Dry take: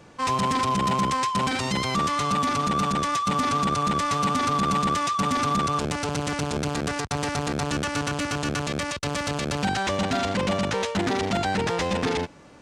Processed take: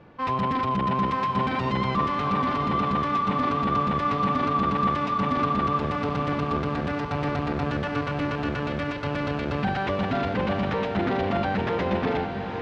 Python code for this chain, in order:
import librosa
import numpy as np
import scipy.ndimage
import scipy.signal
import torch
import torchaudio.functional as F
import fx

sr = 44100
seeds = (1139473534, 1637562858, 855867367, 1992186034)

y = fx.air_absorb(x, sr, metres=360.0)
y = fx.echo_diffused(y, sr, ms=854, feedback_pct=41, wet_db=-5.5)